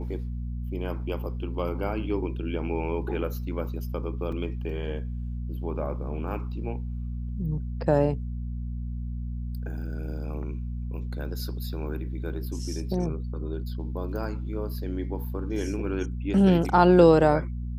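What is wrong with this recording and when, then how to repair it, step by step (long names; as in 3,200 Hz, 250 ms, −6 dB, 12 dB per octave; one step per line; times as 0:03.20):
mains hum 60 Hz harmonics 4 −32 dBFS
0:04.32: drop-out 4 ms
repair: hum removal 60 Hz, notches 4
repair the gap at 0:04.32, 4 ms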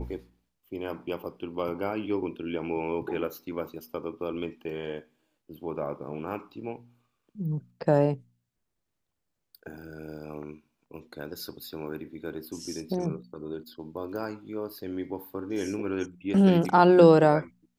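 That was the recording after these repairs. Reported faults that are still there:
none of them is left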